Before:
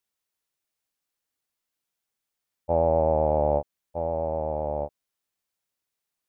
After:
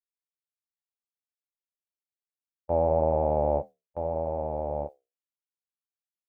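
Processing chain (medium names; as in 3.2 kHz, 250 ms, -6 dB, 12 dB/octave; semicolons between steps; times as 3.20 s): gate with hold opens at -23 dBFS; flange 0.89 Hz, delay 8 ms, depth 8.1 ms, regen -65%; trim +2 dB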